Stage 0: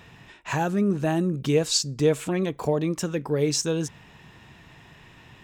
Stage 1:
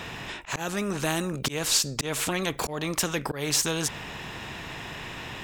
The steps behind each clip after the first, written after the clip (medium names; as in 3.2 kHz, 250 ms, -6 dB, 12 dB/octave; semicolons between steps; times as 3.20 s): slow attack 226 ms; spectrum-flattening compressor 2:1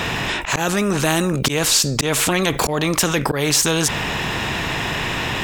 level flattener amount 50%; trim +6 dB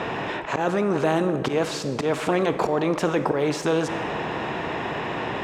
band-pass filter 520 Hz, Q 0.74; reverberation RT60 2.3 s, pre-delay 33 ms, DRR 10.5 dB